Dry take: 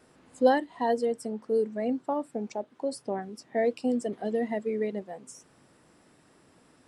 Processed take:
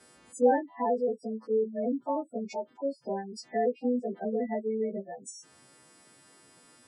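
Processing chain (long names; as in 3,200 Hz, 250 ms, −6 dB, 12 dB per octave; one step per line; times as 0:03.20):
every partial snapped to a pitch grid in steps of 2 semitones
gate on every frequency bin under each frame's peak −15 dB strong
treble cut that deepens with the level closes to 1,200 Hz, closed at −27 dBFS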